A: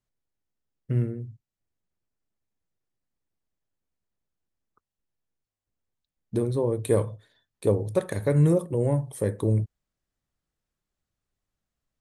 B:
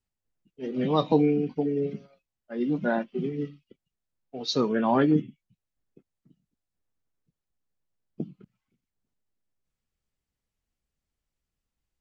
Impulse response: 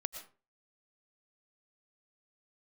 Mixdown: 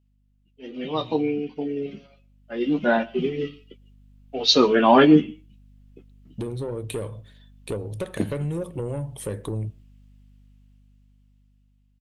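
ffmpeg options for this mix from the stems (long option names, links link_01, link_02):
-filter_complex "[0:a]acompressor=threshold=-27dB:ratio=6,asoftclip=type=tanh:threshold=-24dB,adelay=50,volume=-12dB,asplit=2[link_01][link_02];[link_02]volume=-20.5dB[link_03];[1:a]equalizer=frequency=130:width=0.94:gain=-8.5,flanger=delay=9.8:depth=6:regen=-33:speed=0.24:shape=triangular,aeval=exprs='val(0)+0.000631*(sin(2*PI*50*n/s)+sin(2*PI*2*50*n/s)/2+sin(2*PI*3*50*n/s)/3+sin(2*PI*4*50*n/s)/4+sin(2*PI*5*50*n/s)/5)':channel_layout=same,volume=-1dB,asplit=2[link_04][link_05];[link_05]volume=-16dB[link_06];[2:a]atrim=start_sample=2205[link_07];[link_03][link_06]amix=inputs=2:normalize=0[link_08];[link_08][link_07]afir=irnorm=-1:irlink=0[link_09];[link_01][link_04][link_09]amix=inputs=3:normalize=0,equalizer=frequency=2900:width_type=o:width=0.7:gain=9.5,dynaudnorm=framelen=650:gausssize=7:maxgain=14.5dB"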